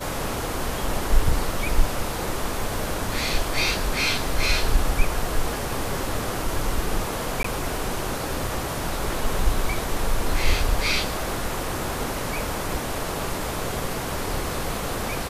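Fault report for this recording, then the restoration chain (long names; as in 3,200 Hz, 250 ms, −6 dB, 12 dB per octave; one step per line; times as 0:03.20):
0:07.43–0:07.44: drop-out 14 ms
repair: repair the gap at 0:07.43, 14 ms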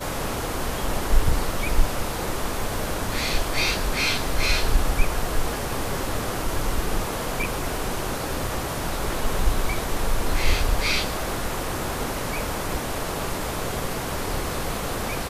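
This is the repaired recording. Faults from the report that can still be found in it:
none of them is left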